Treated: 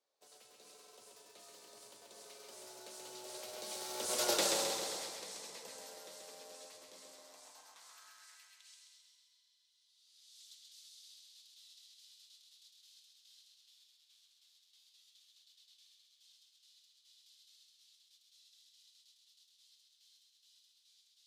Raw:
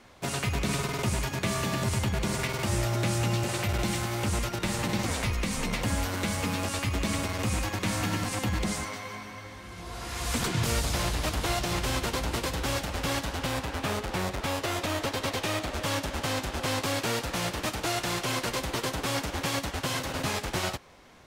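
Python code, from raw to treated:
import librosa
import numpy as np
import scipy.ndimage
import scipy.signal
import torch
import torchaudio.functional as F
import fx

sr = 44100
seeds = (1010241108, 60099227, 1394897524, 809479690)

p1 = fx.doppler_pass(x, sr, speed_mps=19, closest_m=1.8, pass_at_s=4.32)
p2 = fx.filter_sweep_highpass(p1, sr, from_hz=490.0, to_hz=3500.0, start_s=7.0, end_s=8.94, q=2.7)
p3 = fx.high_shelf_res(p2, sr, hz=3200.0, db=8.5, q=1.5)
p4 = p3 + fx.echo_feedback(p3, sr, ms=132, feedback_pct=57, wet_db=-4.0, dry=0)
y = p4 * 10.0 ** (-2.5 / 20.0)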